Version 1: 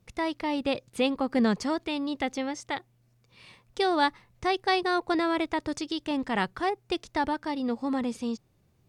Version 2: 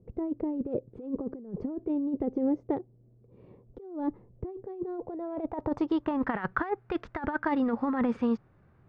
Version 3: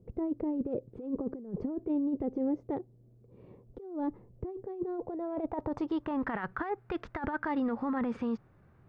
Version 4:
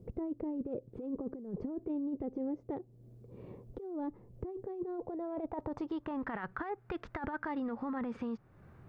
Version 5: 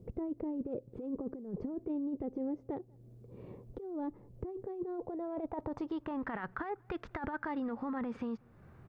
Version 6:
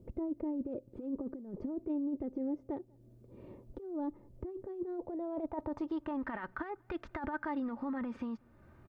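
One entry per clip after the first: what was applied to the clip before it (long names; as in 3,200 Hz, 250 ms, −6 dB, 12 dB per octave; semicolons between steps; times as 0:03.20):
low-pass filter sweep 420 Hz → 1,500 Hz, 0:04.79–0:06.36; compressor whose output falls as the input rises −29 dBFS, ratio −0.5
brickwall limiter −24 dBFS, peak gain reduction 10.5 dB
downward compressor 2 to 1, threshold −48 dBFS, peak gain reduction 11.5 dB; level +5 dB
slap from a distant wall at 33 metres, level −30 dB
comb filter 3.3 ms, depth 47%; level −2 dB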